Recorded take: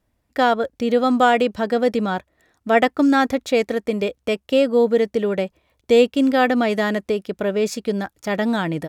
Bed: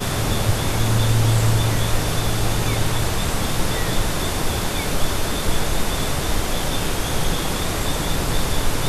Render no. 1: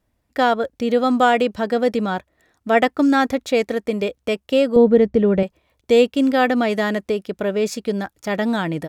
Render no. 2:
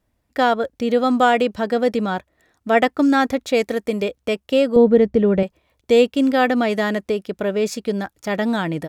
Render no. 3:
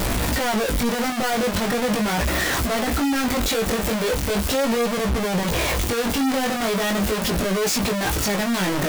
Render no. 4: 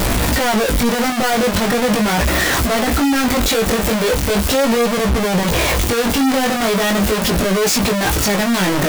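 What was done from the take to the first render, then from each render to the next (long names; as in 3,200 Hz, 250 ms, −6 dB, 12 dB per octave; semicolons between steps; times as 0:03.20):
0:04.76–0:05.43: RIAA equalisation playback
0:03.53–0:04.03: high-shelf EQ 6,900 Hz +6 dB
sign of each sample alone; chorus effect 0.39 Hz, delay 16 ms, depth 6.6 ms
level +6 dB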